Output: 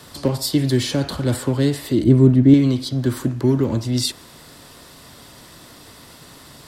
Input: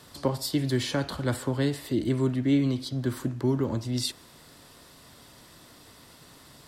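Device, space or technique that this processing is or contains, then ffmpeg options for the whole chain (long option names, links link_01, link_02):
one-band saturation: -filter_complex "[0:a]acrossover=split=550|3300[link_01][link_02][link_03];[link_02]asoftclip=type=tanh:threshold=-40dB[link_04];[link_01][link_04][link_03]amix=inputs=3:normalize=0,asettb=1/sr,asplit=3[link_05][link_06][link_07];[link_05]atrim=end=2.044[link_08];[link_06]atrim=start=2.04:end=2.54,asetpts=PTS-STARTPTS,afade=type=in:duration=0.004:curve=qsin,afade=type=out:start_time=0.496:duration=0.004:curve=qsin,tiltshelf=frequency=680:gain=7[link_09];[link_07]atrim=start=2.536[link_10];[link_08][link_09]acrossfade=duration=0.004:curve1=hsin:curve2=qsin[link_11];[link_11][link_10]acrossfade=duration=0.004:curve1=qsin:curve2=hsin,volume=8.5dB"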